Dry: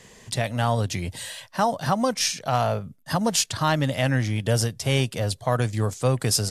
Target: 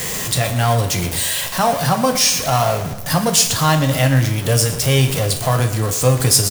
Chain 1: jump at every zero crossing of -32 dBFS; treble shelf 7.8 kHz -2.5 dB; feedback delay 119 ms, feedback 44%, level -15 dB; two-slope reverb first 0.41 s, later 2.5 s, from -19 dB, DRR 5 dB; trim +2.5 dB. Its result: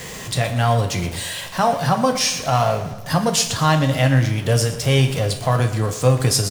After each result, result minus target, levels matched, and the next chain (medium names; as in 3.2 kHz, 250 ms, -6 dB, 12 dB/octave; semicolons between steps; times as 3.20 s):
8 kHz band -4.5 dB; jump at every zero crossing: distortion -6 dB
jump at every zero crossing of -32 dBFS; treble shelf 7.8 kHz +9 dB; feedback delay 119 ms, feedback 44%, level -15 dB; two-slope reverb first 0.41 s, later 2.5 s, from -19 dB, DRR 5 dB; trim +2.5 dB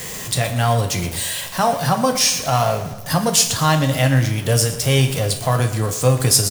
jump at every zero crossing: distortion -6 dB
jump at every zero crossing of -25 dBFS; treble shelf 7.8 kHz +9 dB; feedback delay 119 ms, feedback 44%, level -15 dB; two-slope reverb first 0.41 s, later 2.5 s, from -19 dB, DRR 5 dB; trim +2.5 dB